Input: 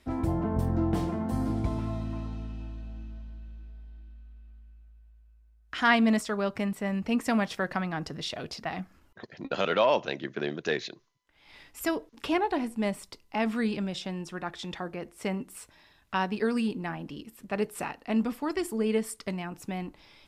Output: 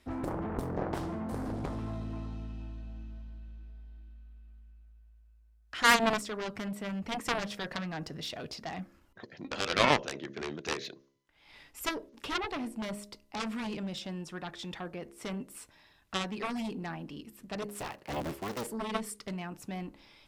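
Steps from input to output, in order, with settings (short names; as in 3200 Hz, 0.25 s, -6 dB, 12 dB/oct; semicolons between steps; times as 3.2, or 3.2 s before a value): 17.68–18.67 cycle switcher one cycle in 3, inverted; de-hum 68.42 Hz, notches 9; added harmonics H 7 -12 dB, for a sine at -9 dBFS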